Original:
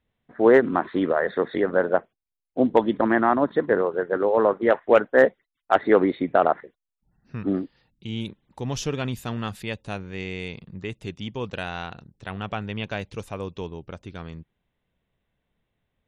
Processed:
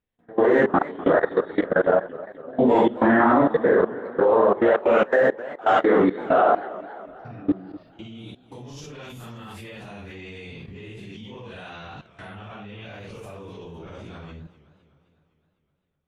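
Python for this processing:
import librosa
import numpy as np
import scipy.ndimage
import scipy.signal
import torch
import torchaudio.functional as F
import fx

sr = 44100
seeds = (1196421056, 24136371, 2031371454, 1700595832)

y = fx.phase_scramble(x, sr, seeds[0], window_ms=200)
y = fx.level_steps(y, sr, step_db=23)
y = fx.echo_warbled(y, sr, ms=256, feedback_pct=59, rate_hz=2.8, cents=185, wet_db=-17.5)
y = F.gain(torch.from_numpy(y), 6.5).numpy()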